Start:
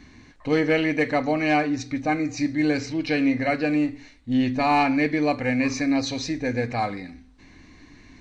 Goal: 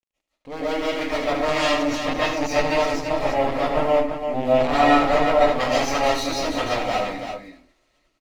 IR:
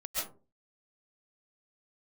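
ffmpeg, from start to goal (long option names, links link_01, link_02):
-filter_complex "[0:a]dynaudnorm=framelen=380:gausssize=7:maxgain=7.5dB,aeval=exprs='0.631*(cos(1*acos(clip(val(0)/0.631,-1,1)))-cos(1*PI/2))+0.0708*(cos(2*acos(clip(val(0)/0.631,-1,1)))-cos(2*PI/2))+0.282*(cos(3*acos(clip(val(0)/0.631,-1,1)))-cos(3*PI/2))+0.00398*(cos(6*acos(clip(val(0)/0.631,-1,1)))-cos(6*PI/2))':channel_layout=same,asettb=1/sr,asplit=3[link_01][link_02][link_03];[link_01]atrim=end=2.854[link_04];[link_02]atrim=start=2.85:end=5.6,asetpts=PTS-STARTPTS,afade=type=in:duration=0.004:curve=qsin,afade=type=out:start_time=2.746:duration=0.004:curve=qsin,equalizer=frequency=6500:width_type=o:width=3:gain=-14[link_05];[link_03]atrim=start=5.596[link_06];[link_04][link_05]acrossfade=duration=0.004:curve1=hsin:curve2=qsin[link_07];[link_07][link_06]acrossfade=duration=0.004:curve1=qsin:curve2=hsin,alimiter=limit=-12.5dB:level=0:latency=1:release=142,equalizer=frequency=620:width_type=o:width=1.4:gain=4.5,bandreject=frequency=60:width_type=h:width=6,bandreject=frequency=120:width_type=h:width=6,bandreject=frequency=180:width_type=h:width=6,bandreject=frequency=240:width_type=h:width=6,bandreject=frequency=300:width_type=h:width=6,aeval=exprs='sgn(val(0))*max(abs(val(0))-0.00316,0)':channel_layout=same,bandreject=frequency=1500:width=12,aecho=1:1:76|338:0.422|0.422[link_08];[1:a]atrim=start_sample=2205,afade=type=out:start_time=0.23:duration=0.01,atrim=end_sample=10584[link_09];[link_08][link_09]afir=irnorm=-1:irlink=0,volume=3.5dB"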